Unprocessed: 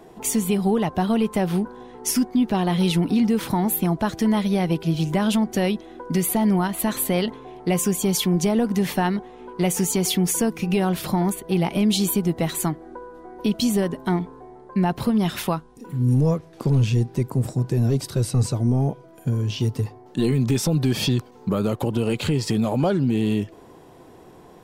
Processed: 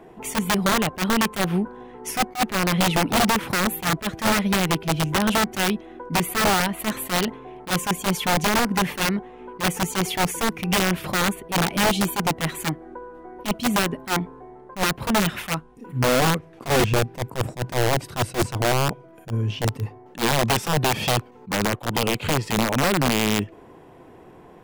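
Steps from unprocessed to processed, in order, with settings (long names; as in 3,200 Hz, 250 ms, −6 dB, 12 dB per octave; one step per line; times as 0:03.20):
high shelf with overshoot 3,300 Hz −7 dB, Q 1.5
wrap-around overflow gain 14.5 dB
level that may rise only so fast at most 280 dB per second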